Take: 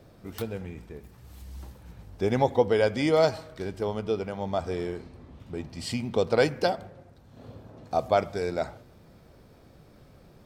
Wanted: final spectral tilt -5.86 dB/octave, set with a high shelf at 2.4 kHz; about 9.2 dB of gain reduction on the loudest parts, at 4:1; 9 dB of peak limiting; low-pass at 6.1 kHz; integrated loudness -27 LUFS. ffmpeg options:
-af "lowpass=6100,highshelf=f=2400:g=-4,acompressor=threshold=0.0398:ratio=4,volume=3.76,alimiter=limit=0.2:level=0:latency=1"

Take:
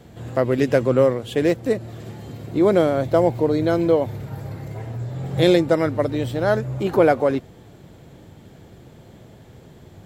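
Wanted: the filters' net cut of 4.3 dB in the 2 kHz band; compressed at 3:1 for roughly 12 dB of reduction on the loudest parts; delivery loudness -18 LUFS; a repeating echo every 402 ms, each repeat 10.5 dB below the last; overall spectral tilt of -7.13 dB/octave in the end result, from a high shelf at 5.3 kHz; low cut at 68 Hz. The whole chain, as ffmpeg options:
-af "highpass=68,equalizer=f=2000:t=o:g=-5.5,highshelf=f=5300:g=-4,acompressor=threshold=0.0398:ratio=3,aecho=1:1:402|804|1206:0.299|0.0896|0.0269,volume=3.98"

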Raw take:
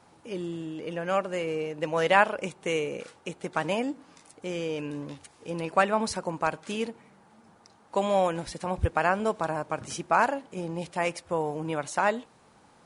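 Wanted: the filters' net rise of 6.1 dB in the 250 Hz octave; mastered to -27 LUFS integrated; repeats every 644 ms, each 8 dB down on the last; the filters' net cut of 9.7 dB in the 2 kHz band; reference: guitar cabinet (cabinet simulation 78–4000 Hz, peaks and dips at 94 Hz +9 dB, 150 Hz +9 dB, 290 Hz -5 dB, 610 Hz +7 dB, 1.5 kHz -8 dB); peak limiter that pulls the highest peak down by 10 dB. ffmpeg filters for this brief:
-af "equalizer=f=250:t=o:g=8.5,equalizer=f=2000:t=o:g=-8,alimiter=limit=0.126:level=0:latency=1,highpass=78,equalizer=f=94:t=q:w=4:g=9,equalizer=f=150:t=q:w=4:g=9,equalizer=f=290:t=q:w=4:g=-5,equalizer=f=610:t=q:w=4:g=7,equalizer=f=1500:t=q:w=4:g=-8,lowpass=f=4000:w=0.5412,lowpass=f=4000:w=1.3066,aecho=1:1:644|1288|1932|2576|3220:0.398|0.159|0.0637|0.0255|0.0102,volume=1.19"

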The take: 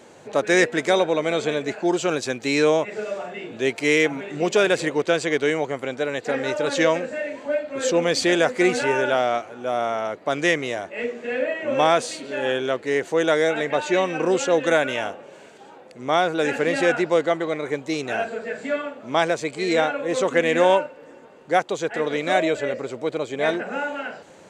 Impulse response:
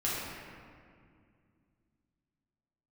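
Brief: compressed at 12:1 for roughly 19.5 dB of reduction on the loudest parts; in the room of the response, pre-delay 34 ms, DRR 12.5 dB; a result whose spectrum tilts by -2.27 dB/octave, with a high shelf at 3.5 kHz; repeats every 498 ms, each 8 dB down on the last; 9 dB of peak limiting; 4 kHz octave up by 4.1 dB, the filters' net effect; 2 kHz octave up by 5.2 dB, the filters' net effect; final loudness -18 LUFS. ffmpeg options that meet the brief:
-filter_complex "[0:a]equalizer=f=2000:t=o:g=6.5,highshelf=f=3500:g=-6,equalizer=f=4000:t=o:g=6.5,acompressor=threshold=0.0282:ratio=12,alimiter=level_in=1.19:limit=0.0631:level=0:latency=1,volume=0.841,aecho=1:1:498|996|1494|1992|2490:0.398|0.159|0.0637|0.0255|0.0102,asplit=2[s0][s1];[1:a]atrim=start_sample=2205,adelay=34[s2];[s1][s2]afir=irnorm=-1:irlink=0,volume=0.0944[s3];[s0][s3]amix=inputs=2:normalize=0,volume=7.5"

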